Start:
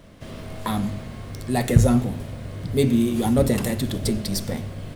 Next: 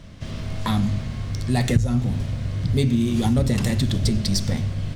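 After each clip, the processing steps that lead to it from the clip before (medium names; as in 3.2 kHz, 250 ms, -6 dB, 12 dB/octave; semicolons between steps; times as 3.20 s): FFT filter 120 Hz 0 dB, 430 Hz -11 dB, 5.9 kHz -2 dB, 12 kHz -15 dB; compression 6:1, threshold -24 dBFS, peak gain reduction 15.5 dB; trim +8.5 dB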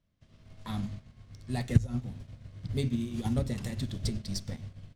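upward expansion 2.5:1, over -34 dBFS; trim -3 dB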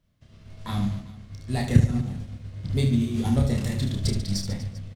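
reverse bouncing-ball echo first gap 30 ms, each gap 1.5×, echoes 5; trim +5 dB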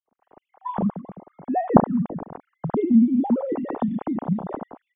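formants replaced by sine waves; in parallel at -1 dB: compression, threshold -30 dBFS, peak gain reduction 19.5 dB; on the sum: resonant low-pass 850 Hz, resonance Q 1.8; trim -1 dB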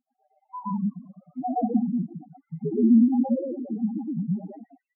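loudest bins only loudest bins 2; on a send: reverse echo 117 ms -3 dB; on the sum: trim -2 dB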